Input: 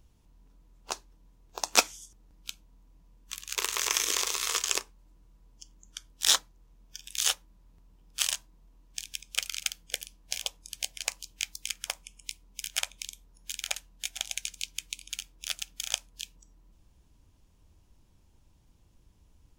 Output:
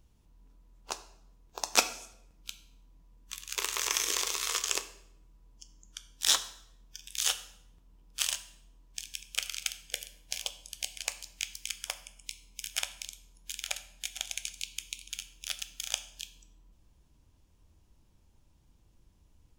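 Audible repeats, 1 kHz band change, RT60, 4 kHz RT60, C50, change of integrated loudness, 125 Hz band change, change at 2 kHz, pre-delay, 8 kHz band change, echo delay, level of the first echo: no echo, -2.0 dB, 0.75 s, 0.65 s, 14.0 dB, -2.0 dB, no reading, -2.0 dB, 10 ms, -2.0 dB, no echo, no echo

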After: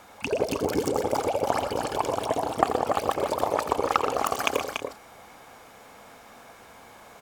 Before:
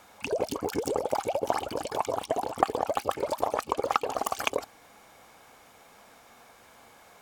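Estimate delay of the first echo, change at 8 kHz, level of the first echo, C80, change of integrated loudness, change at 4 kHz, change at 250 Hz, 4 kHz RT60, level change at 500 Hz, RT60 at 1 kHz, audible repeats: 86 ms, +3.0 dB, -10.5 dB, no reverb, +3.5 dB, +4.0 dB, +5.5 dB, no reverb, +3.5 dB, no reverb, 4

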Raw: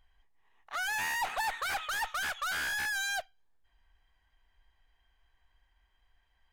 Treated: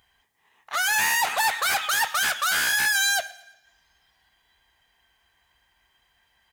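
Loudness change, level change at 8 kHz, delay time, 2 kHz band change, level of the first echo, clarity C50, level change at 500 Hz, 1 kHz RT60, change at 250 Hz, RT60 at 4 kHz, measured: +11.0 dB, +15.0 dB, 115 ms, +10.0 dB, -23.0 dB, 15.5 dB, +8.5 dB, 1.0 s, +8.0 dB, 2.4 s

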